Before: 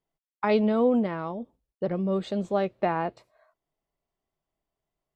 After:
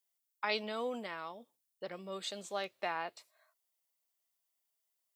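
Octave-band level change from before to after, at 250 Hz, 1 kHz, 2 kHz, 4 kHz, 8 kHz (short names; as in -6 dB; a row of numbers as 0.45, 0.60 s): -21.5 dB, -9.5 dB, -3.0 dB, +2.5 dB, n/a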